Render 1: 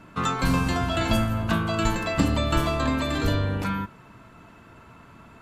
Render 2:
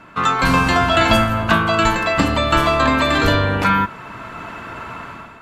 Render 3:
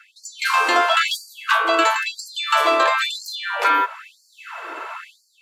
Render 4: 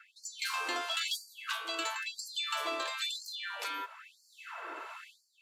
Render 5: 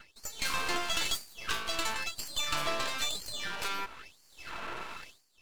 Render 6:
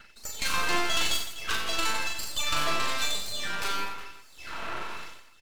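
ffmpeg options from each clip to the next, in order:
-af "equalizer=f=1.5k:w=0.32:g=10,dynaudnorm=f=160:g=5:m=12dB,volume=-1dB"
-af "asoftclip=type=hard:threshold=-7dB,afftfilt=real='re*gte(b*sr/1024,270*pow(4300/270,0.5+0.5*sin(2*PI*1*pts/sr)))':imag='im*gte(b*sr/1024,270*pow(4300/270,0.5+0.5*sin(2*PI*1*pts/sr)))':win_size=1024:overlap=0.75"
-filter_complex "[0:a]acrossover=split=210|3000[a][b][c];[b]acompressor=threshold=-34dB:ratio=2.5[d];[a][d][c]amix=inputs=3:normalize=0,acrossover=split=2500[e][f];[e]aeval=exprs='val(0)*(1-0.5/2+0.5/2*cos(2*PI*1.5*n/s))':c=same[g];[f]aeval=exprs='val(0)*(1-0.5/2-0.5/2*cos(2*PI*1.5*n/s))':c=same[h];[g][h]amix=inputs=2:normalize=0,volume=-6.5dB"
-af "aeval=exprs='max(val(0),0)':c=same,volume=7dB"
-af "aecho=1:1:40|92|159.6|247.5|361.7:0.631|0.398|0.251|0.158|0.1,volume=2dB"

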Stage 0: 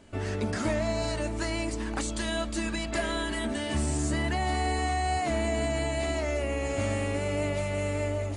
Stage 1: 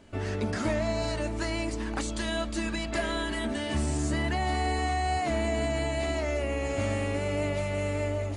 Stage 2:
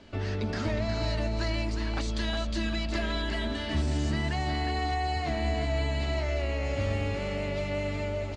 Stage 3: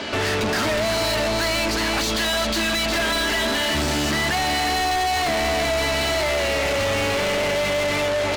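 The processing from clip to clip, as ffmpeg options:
-af "equalizer=f=8.5k:t=o:w=0.67:g=-4"
-filter_complex "[0:a]acrossover=split=170[a][b];[b]acompressor=threshold=-44dB:ratio=1.5[c];[a][c]amix=inputs=2:normalize=0,lowpass=f=4.6k:t=q:w=1.7,asplit=2[d][e];[e]aecho=0:1:362:0.473[f];[d][f]amix=inputs=2:normalize=0,volume=2dB"
-filter_complex "[0:a]asplit=2[a][b];[b]highpass=f=720:p=1,volume=36dB,asoftclip=type=tanh:threshold=-15.5dB[c];[a][c]amix=inputs=2:normalize=0,lowpass=f=7.1k:p=1,volume=-6dB"

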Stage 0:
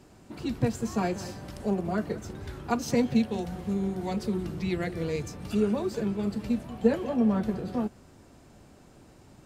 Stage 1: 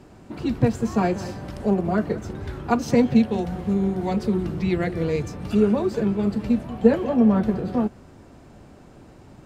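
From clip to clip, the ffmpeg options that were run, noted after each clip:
-af "highshelf=f=3.8k:g=-9.5,volume=7dB"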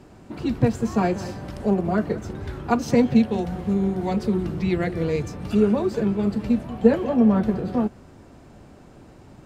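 -af anull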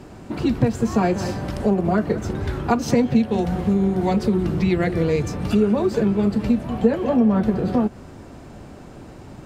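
-af "acompressor=threshold=-24dB:ratio=2.5,volume=7dB"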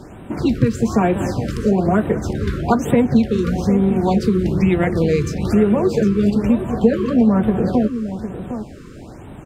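-af "aecho=1:1:757:0.299,afftfilt=real='re*(1-between(b*sr/1024,700*pow(5700/700,0.5+0.5*sin(2*PI*1.1*pts/sr))/1.41,700*pow(5700/700,0.5+0.5*sin(2*PI*1.1*pts/sr))*1.41))':imag='im*(1-between(b*sr/1024,700*pow(5700/700,0.5+0.5*sin(2*PI*1.1*pts/sr))/1.41,700*pow(5700/700,0.5+0.5*sin(2*PI*1.1*pts/sr))*1.41))':win_size=1024:overlap=0.75,volume=3dB"

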